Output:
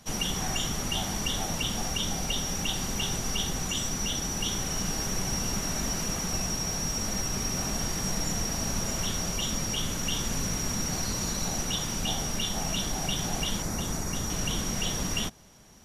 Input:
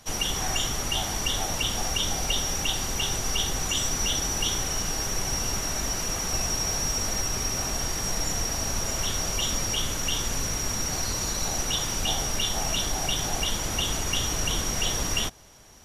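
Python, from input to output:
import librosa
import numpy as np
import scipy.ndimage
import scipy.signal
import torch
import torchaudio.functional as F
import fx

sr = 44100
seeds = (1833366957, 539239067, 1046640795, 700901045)

y = fx.peak_eq(x, sr, hz=190.0, db=9.0, octaves=0.98)
y = fx.rider(y, sr, range_db=10, speed_s=0.5)
y = fx.peak_eq(y, sr, hz=3100.0, db=-11.5, octaves=0.63, at=(13.62, 14.3))
y = y * librosa.db_to_amplitude(-3.5)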